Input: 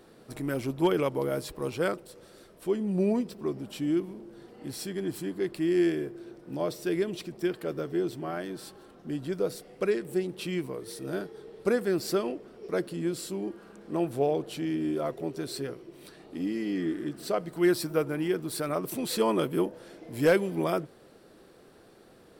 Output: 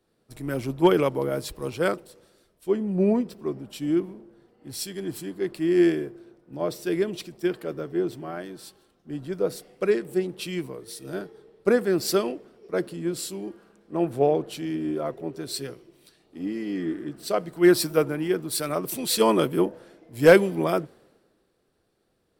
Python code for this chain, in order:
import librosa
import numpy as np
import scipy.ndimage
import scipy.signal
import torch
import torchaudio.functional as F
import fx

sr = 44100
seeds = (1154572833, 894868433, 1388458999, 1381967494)

y = fx.band_widen(x, sr, depth_pct=70)
y = y * 10.0 ** (3.0 / 20.0)